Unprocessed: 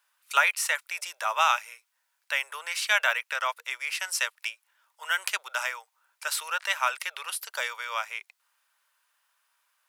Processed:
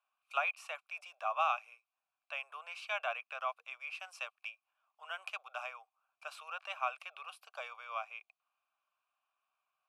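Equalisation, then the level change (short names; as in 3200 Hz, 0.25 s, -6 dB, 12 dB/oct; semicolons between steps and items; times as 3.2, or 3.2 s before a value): vowel filter a; bell 11000 Hz +3.5 dB 0.52 oct; +1.0 dB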